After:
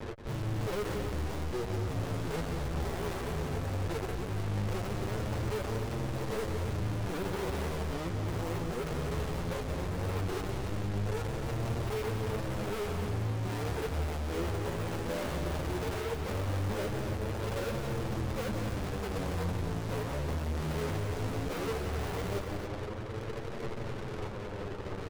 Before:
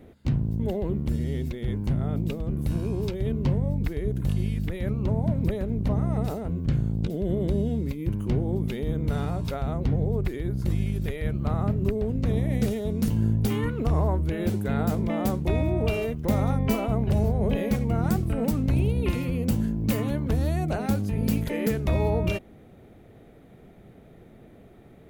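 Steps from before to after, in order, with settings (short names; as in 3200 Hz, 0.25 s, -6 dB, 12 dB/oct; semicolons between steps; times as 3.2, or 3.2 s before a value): steep low-pass 610 Hz 96 dB/oct; comb 2.1 ms, depth 61%; in parallel at +1.5 dB: compressor, threshold -33 dBFS, peak gain reduction 15 dB; on the sum: fuzz box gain 43 dB, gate -43 dBFS; random-step tremolo, depth 70%; soft clip -31 dBFS, distortion -8 dB; flange 0.17 Hz, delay 8.6 ms, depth 3.8 ms, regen +16%; loudspeakers at several distances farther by 60 m -8 dB, 93 m -8 dB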